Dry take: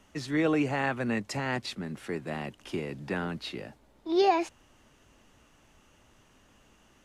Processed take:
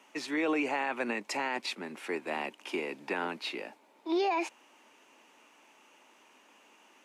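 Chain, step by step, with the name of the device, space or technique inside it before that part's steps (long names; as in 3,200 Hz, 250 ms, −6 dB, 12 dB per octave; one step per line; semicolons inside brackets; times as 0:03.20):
laptop speaker (high-pass filter 270 Hz 24 dB per octave; parametric band 920 Hz +7.5 dB 0.38 octaves; parametric band 2,400 Hz +8.5 dB 0.39 octaves; brickwall limiter −22 dBFS, peak gain reduction 11.5 dB)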